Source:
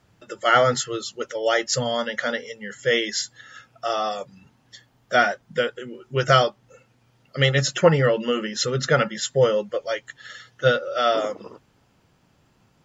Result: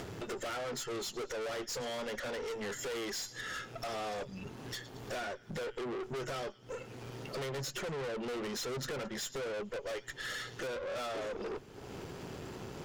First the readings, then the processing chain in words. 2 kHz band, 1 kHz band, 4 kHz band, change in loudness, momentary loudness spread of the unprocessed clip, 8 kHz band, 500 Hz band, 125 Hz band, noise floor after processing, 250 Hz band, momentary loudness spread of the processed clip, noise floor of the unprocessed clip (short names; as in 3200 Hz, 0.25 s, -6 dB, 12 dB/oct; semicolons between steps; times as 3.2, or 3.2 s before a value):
-16.5 dB, -18.0 dB, -15.0 dB, -17.0 dB, 15 LU, n/a, -16.0 dB, -18.5 dB, -53 dBFS, -12.5 dB, 8 LU, -63 dBFS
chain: compressor 8:1, threshold -33 dBFS, peak gain reduction 22.5 dB; bell 400 Hz +12.5 dB 0.57 oct; thin delay 0.109 s, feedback 42%, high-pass 2200 Hz, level -21 dB; upward compressor, threshold -36 dBFS; tube stage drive 43 dB, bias 0.6; gain +6.5 dB